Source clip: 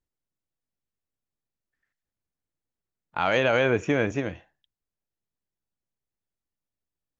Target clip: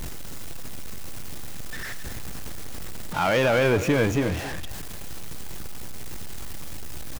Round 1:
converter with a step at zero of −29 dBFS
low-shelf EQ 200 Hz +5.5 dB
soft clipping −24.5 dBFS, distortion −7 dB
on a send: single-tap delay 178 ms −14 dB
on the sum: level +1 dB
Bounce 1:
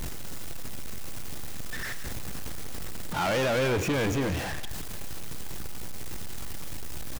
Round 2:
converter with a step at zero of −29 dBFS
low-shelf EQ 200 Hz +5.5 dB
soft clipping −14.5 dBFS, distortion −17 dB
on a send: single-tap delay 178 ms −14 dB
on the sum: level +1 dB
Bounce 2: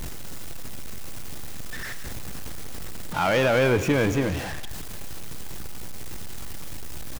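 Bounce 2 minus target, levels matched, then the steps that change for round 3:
echo 89 ms early
change: single-tap delay 267 ms −14 dB

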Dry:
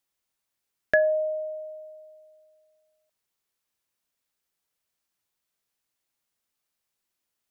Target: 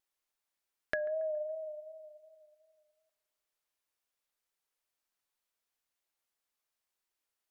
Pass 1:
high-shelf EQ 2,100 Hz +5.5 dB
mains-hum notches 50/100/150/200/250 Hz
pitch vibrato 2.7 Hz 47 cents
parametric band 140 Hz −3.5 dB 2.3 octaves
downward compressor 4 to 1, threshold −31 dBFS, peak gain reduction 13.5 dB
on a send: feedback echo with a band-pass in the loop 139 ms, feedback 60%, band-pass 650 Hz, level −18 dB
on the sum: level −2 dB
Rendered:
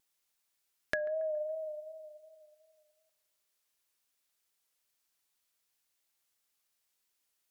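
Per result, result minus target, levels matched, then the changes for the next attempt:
4,000 Hz band +5.0 dB; 125 Hz band +3.0 dB
change: high-shelf EQ 2,100 Hz −4 dB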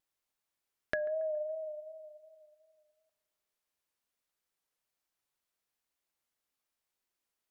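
125 Hz band +3.5 dB
change: parametric band 140 Hz −10.5 dB 2.3 octaves

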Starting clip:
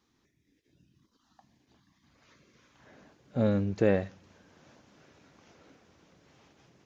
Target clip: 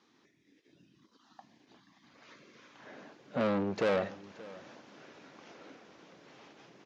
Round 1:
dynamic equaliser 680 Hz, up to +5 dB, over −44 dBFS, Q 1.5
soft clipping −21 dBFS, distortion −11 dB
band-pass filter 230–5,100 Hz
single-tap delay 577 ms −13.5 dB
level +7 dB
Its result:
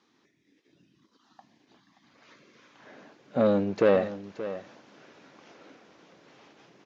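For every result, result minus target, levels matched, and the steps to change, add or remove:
soft clipping: distortion −7 dB; echo-to-direct +6.5 dB
change: soft clipping −32 dBFS, distortion −4 dB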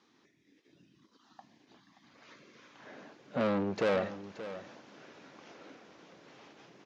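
echo-to-direct +6.5 dB
change: single-tap delay 577 ms −20 dB

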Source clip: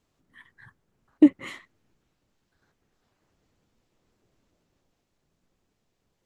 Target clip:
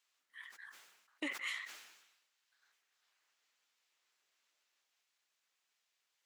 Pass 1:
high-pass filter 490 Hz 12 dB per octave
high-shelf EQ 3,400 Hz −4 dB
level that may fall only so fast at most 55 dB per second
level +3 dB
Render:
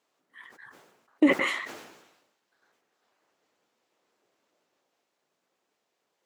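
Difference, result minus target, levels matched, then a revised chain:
2,000 Hz band −6.5 dB
high-pass filter 1,900 Hz 12 dB per octave
high-shelf EQ 3,400 Hz −4 dB
level that may fall only so fast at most 55 dB per second
level +3 dB

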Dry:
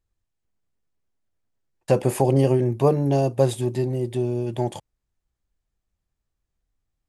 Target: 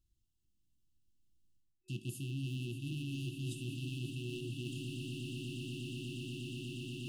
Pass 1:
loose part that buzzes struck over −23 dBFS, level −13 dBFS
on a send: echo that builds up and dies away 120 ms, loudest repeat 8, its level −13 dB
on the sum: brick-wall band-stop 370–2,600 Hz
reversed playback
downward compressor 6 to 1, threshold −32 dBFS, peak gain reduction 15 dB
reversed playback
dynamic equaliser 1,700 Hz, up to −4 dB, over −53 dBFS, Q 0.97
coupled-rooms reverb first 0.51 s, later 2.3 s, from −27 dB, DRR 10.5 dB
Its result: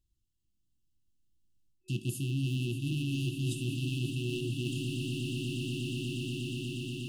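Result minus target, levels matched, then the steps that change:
downward compressor: peak gain reduction −7.5 dB
change: downward compressor 6 to 1, threshold −41 dBFS, peak gain reduction 22.5 dB

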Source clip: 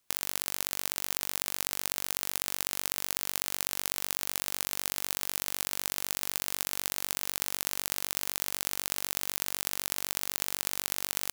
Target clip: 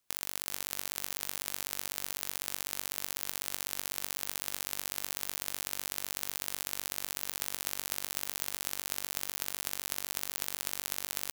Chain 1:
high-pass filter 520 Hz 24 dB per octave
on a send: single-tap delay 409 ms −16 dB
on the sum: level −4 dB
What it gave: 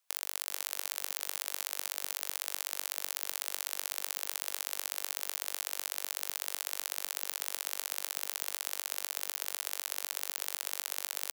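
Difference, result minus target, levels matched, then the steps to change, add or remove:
500 Hz band −3.0 dB
remove: high-pass filter 520 Hz 24 dB per octave

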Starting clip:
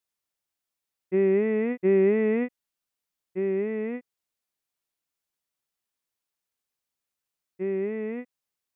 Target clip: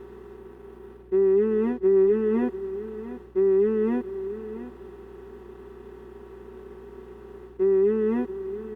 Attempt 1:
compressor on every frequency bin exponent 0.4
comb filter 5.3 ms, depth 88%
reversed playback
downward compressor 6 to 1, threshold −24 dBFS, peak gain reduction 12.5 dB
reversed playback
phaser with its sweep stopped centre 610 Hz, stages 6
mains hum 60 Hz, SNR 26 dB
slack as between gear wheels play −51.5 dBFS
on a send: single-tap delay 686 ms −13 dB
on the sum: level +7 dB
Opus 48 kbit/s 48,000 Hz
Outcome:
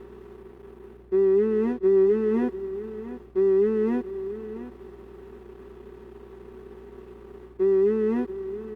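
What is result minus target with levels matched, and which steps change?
slack as between gear wheels: distortion +9 dB
change: slack as between gear wheels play −61 dBFS

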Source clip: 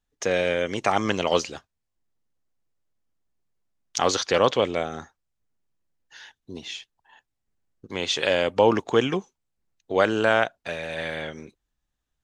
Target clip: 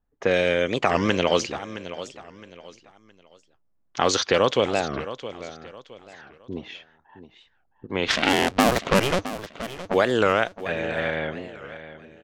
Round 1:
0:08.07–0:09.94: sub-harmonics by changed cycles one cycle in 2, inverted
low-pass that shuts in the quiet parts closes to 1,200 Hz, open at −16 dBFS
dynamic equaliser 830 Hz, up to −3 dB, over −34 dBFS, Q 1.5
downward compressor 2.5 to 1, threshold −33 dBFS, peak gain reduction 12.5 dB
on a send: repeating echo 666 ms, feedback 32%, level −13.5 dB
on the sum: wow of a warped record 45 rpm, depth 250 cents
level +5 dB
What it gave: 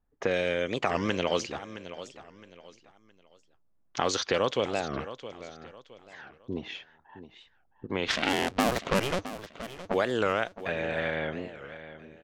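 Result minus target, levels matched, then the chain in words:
downward compressor: peak gain reduction +7 dB
0:08.07–0:09.94: sub-harmonics by changed cycles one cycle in 2, inverted
low-pass that shuts in the quiet parts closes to 1,200 Hz, open at −16 dBFS
dynamic equaliser 830 Hz, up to −3 dB, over −34 dBFS, Q 1.5
downward compressor 2.5 to 1, threshold −21.5 dBFS, peak gain reduction 5.5 dB
on a send: repeating echo 666 ms, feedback 32%, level −13.5 dB
on the sum: wow of a warped record 45 rpm, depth 250 cents
level +5 dB

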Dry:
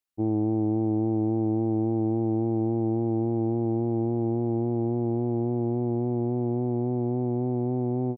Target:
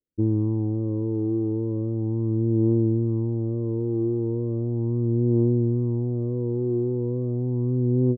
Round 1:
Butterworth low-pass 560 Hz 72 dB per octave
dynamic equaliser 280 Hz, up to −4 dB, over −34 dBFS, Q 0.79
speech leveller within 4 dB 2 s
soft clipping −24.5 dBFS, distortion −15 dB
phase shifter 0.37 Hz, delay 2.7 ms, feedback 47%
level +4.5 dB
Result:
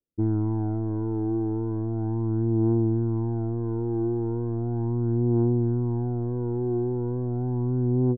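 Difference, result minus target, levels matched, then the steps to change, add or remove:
soft clipping: distortion +12 dB
change: soft clipping −17 dBFS, distortion −27 dB

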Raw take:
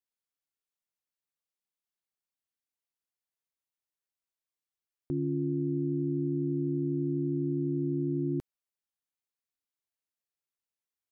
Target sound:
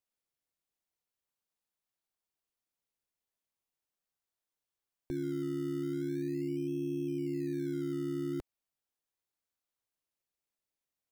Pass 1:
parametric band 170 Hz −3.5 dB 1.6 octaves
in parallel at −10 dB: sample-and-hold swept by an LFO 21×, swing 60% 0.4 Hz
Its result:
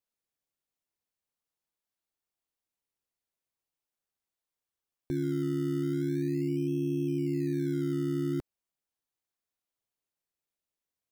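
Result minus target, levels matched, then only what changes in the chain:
125 Hz band +3.5 dB
change: parametric band 170 Hz −12.5 dB 1.6 octaves

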